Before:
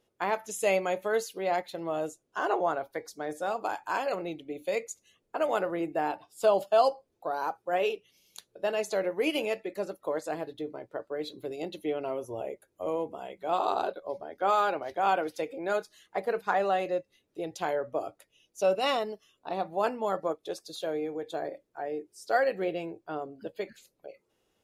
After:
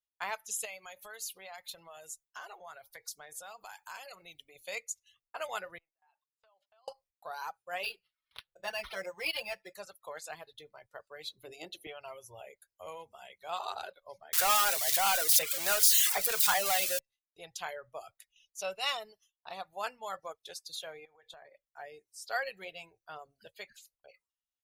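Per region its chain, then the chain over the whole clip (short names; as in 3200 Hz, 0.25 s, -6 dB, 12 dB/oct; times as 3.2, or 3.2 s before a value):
0.65–4.56 high shelf 7400 Hz +9 dB + compressor 3:1, threshold -37 dBFS
5.78–6.88 LPF 1300 Hz + differentiator + compressor 8:1, threshold -56 dBFS
7.83–9.74 comb 5.8 ms, depth 97% + decimation joined by straight lines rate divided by 6×
11.43–11.87 bell 320 Hz +13.5 dB 0.68 oct + de-hum 73.36 Hz, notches 10
14.33–16.99 switching spikes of -22 dBFS + sample leveller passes 2 + three-band squash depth 40%
21.05–21.67 tone controls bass -2 dB, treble -9 dB + compressor 16:1, threshold -37 dBFS
whole clip: reverb removal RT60 0.76 s; gate with hold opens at -57 dBFS; passive tone stack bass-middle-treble 10-0-10; gain +3 dB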